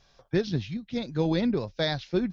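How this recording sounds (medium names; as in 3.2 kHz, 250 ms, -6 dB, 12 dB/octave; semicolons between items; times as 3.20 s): tremolo saw up 1.3 Hz, depth 35%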